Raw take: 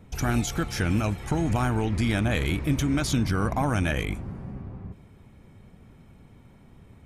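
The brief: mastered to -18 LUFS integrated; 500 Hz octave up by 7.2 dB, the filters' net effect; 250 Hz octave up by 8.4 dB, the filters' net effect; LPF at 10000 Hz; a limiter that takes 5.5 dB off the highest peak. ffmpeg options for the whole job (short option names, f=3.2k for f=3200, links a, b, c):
-af "lowpass=10k,equalizer=f=250:t=o:g=8.5,equalizer=f=500:t=o:g=6.5,volume=5.5dB,alimiter=limit=-7dB:level=0:latency=1"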